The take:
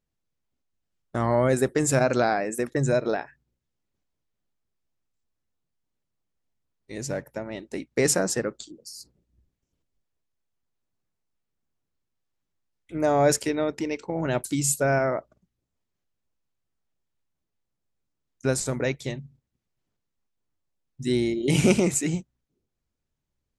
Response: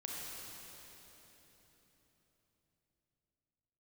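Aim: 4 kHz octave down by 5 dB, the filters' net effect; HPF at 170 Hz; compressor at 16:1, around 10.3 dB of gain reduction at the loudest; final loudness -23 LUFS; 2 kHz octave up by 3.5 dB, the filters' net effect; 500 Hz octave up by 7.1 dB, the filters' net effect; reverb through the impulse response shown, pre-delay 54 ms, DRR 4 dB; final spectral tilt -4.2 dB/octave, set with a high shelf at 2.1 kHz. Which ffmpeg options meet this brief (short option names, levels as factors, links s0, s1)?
-filter_complex "[0:a]highpass=170,equalizer=f=500:t=o:g=9,equalizer=f=2000:t=o:g=7,highshelf=f=2100:g=-3,equalizer=f=4000:t=o:g=-6.5,acompressor=threshold=0.112:ratio=16,asplit=2[s0][s1];[1:a]atrim=start_sample=2205,adelay=54[s2];[s1][s2]afir=irnorm=-1:irlink=0,volume=0.631[s3];[s0][s3]amix=inputs=2:normalize=0,volume=1.33"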